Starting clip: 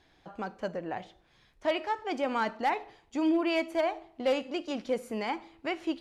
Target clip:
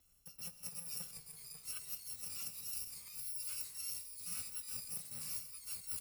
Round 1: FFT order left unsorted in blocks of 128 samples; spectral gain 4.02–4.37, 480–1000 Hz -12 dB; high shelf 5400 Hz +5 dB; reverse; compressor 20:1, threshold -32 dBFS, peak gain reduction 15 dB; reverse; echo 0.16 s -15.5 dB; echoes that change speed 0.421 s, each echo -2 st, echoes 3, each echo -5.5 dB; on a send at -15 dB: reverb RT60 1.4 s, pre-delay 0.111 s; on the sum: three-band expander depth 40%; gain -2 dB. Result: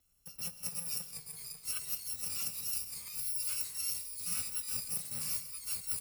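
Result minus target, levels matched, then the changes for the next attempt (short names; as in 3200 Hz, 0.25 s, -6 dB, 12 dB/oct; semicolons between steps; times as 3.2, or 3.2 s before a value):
compressor: peak gain reduction -7 dB
change: compressor 20:1, threshold -39.5 dBFS, peak gain reduction 22 dB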